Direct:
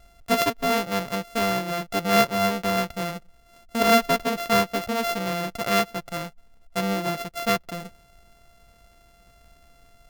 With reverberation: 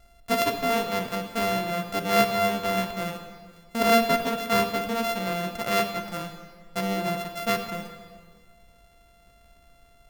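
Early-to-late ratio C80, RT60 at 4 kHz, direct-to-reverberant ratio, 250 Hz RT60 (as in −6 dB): 9.0 dB, 1.5 s, 6.0 dB, 1.8 s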